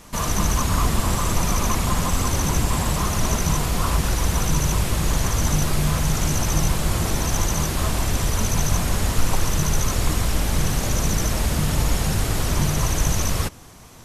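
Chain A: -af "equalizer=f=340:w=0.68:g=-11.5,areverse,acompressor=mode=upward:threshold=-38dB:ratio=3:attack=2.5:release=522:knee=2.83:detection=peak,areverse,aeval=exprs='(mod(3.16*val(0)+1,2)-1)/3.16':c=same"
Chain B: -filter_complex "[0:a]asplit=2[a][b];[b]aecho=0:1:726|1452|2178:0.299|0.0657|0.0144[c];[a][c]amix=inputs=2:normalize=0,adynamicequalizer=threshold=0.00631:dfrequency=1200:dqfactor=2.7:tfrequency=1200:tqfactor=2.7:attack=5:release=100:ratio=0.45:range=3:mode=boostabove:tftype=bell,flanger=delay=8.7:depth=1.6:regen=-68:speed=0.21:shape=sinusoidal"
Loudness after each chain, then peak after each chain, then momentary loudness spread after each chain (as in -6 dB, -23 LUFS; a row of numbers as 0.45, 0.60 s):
-24.0, -26.0 LUFS; -10.0, -9.5 dBFS; 2, 2 LU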